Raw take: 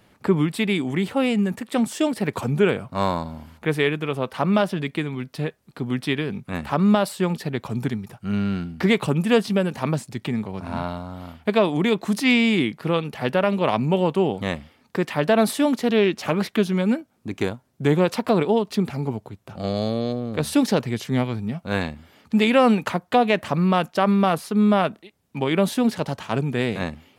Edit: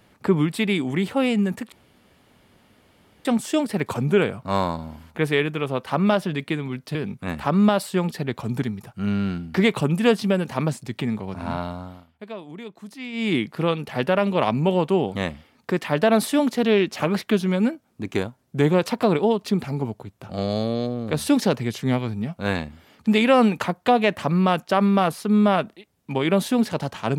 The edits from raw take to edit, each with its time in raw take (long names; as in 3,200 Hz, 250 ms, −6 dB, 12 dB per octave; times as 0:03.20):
0:01.72: splice in room tone 1.53 s
0:05.42–0:06.21: remove
0:11.07–0:12.62: duck −17 dB, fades 0.24 s